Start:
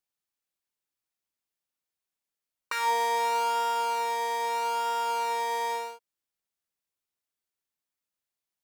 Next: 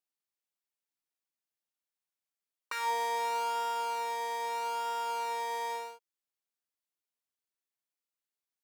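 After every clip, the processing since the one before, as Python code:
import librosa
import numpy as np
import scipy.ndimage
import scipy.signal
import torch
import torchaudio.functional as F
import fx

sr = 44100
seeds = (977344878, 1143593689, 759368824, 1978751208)

y = scipy.signal.sosfilt(scipy.signal.butter(2, 200.0, 'highpass', fs=sr, output='sos'), x)
y = y * 10.0 ** (-5.5 / 20.0)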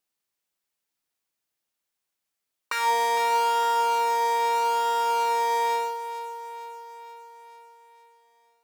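y = fx.echo_feedback(x, sr, ms=457, feedback_pct=59, wet_db=-13.0)
y = y * 10.0 ** (8.5 / 20.0)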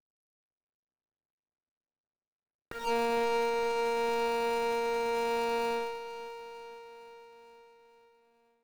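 y = scipy.signal.medfilt(x, 41)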